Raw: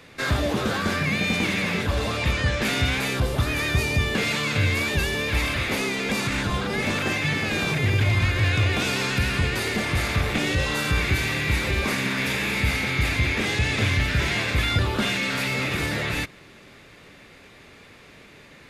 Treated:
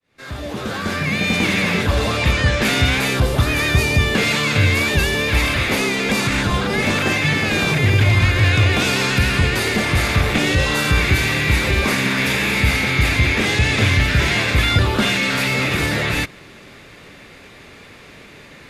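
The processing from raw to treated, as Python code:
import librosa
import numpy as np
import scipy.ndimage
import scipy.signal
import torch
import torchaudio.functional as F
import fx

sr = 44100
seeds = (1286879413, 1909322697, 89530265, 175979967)

y = fx.fade_in_head(x, sr, length_s=1.55)
y = y * librosa.db_to_amplitude(6.5)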